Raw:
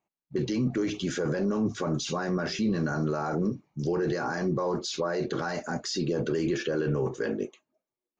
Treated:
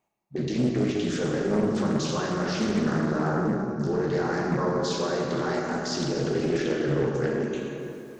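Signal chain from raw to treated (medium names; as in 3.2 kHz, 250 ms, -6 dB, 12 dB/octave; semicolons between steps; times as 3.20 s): reverse; upward compressor, threshold -33 dBFS; reverse; plate-style reverb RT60 2.9 s, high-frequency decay 0.6×, DRR -3 dB; loudspeaker Doppler distortion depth 0.41 ms; trim -2 dB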